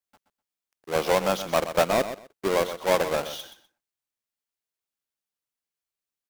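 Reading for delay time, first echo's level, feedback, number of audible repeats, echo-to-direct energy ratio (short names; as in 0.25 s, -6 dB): 0.125 s, -11.5 dB, 18%, 2, -11.5 dB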